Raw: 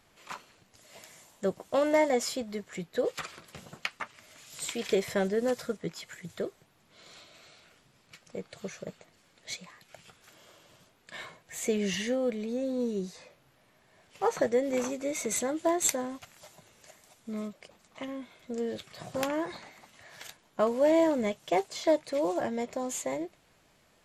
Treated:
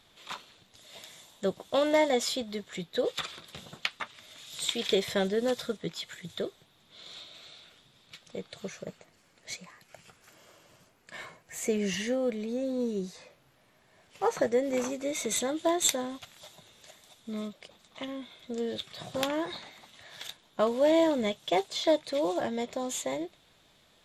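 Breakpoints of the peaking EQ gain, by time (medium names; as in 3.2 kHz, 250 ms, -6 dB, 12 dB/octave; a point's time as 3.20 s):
peaking EQ 3.6 kHz 0.36 oct
8.42 s +13.5 dB
8.72 s +3 dB
9.50 s -4.5 dB
11.84 s -4.5 dB
12.25 s +2 dB
14.89 s +2 dB
15.34 s +12 dB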